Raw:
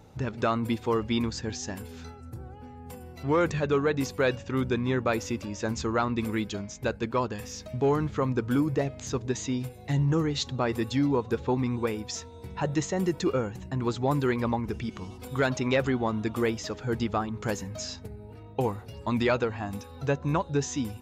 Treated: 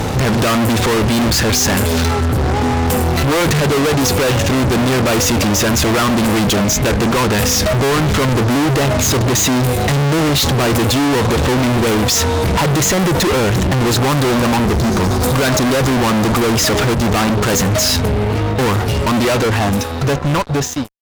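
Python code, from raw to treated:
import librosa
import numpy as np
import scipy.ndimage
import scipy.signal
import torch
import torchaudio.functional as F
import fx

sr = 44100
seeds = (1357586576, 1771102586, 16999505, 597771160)

y = fx.fade_out_tail(x, sr, length_s=4.02)
y = fx.spec_erase(y, sr, start_s=13.93, length_s=2.62, low_hz=1700.0, high_hz=3600.0)
y = fx.fuzz(y, sr, gain_db=53.0, gate_db=-59.0)
y = fx.band_widen(y, sr, depth_pct=70, at=(16.94, 17.54))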